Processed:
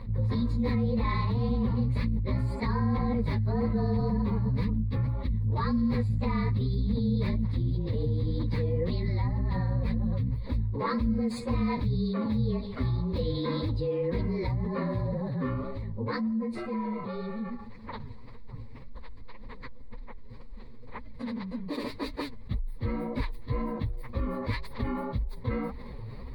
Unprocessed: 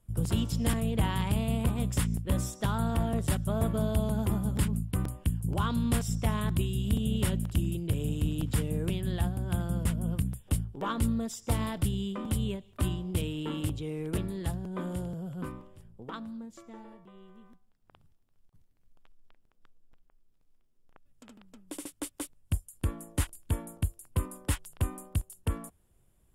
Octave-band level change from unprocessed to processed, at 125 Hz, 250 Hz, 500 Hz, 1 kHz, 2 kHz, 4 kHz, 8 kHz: +2.0 dB, +3.0 dB, +4.5 dB, +2.5 dB, +1.0 dB, -3.0 dB, under -20 dB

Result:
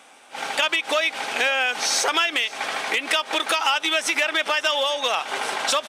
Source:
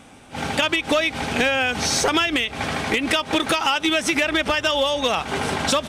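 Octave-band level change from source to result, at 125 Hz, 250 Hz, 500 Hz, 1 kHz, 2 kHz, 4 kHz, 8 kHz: under -25 dB, -12.5 dB, -4.0 dB, -0.5 dB, 0.0 dB, 0.0 dB, 0.0 dB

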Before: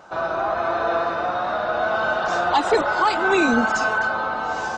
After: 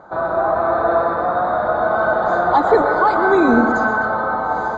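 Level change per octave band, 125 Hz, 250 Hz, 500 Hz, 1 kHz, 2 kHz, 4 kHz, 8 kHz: +6.5 dB, +6.0 dB, +6.0 dB, +5.0 dB, +1.0 dB, -9.0 dB, under -10 dB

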